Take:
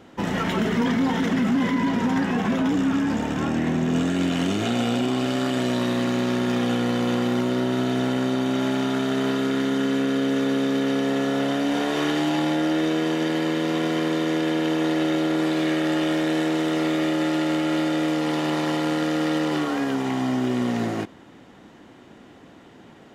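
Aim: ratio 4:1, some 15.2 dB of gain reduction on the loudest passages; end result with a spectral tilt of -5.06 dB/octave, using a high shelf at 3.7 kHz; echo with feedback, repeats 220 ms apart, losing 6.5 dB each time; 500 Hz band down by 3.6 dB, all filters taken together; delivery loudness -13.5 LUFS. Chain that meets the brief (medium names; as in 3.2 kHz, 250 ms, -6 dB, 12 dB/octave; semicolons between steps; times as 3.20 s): peaking EQ 500 Hz -5 dB; treble shelf 3.7 kHz +3.5 dB; compression 4:1, threshold -39 dBFS; feedback delay 220 ms, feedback 47%, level -6.5 dB; trim +24 dB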